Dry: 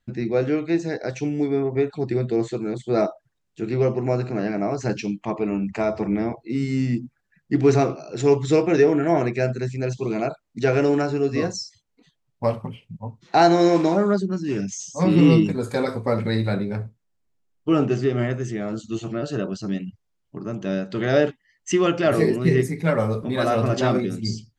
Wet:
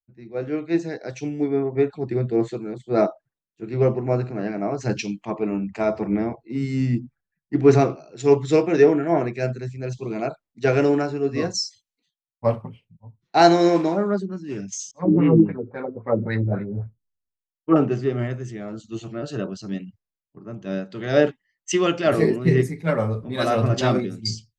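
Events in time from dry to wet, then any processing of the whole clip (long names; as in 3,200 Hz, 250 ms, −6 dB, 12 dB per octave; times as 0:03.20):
0:14.91–0:17.76: auto-filter low-pass sine 3.7 Hz 280–2,100 Hz
whole clip: high-shelf EQ 5,700 Hz −5 dB; automatic gain control gain up to 7.5 dB; multiband upward and downward expander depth 100%; level −6 dB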